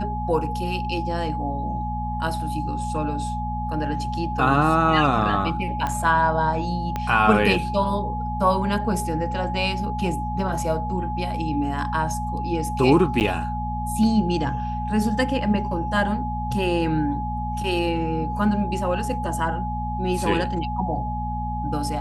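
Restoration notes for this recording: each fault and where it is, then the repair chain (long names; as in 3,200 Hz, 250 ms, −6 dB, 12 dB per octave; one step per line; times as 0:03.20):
mains hum 60 Hz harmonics 4 −29 dBFS
whistle 840 Hz −28 dBFS
0:05.87: click −13 dBFS
0:06.96: click −13 dBFS
0:13.20–0:13.21: drop-out 9.2 ms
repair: click removal
hum removal 60 Hz, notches 4
notch filter 840 Hz, Q 30
repair the gap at 0:13.20, 9.2 ms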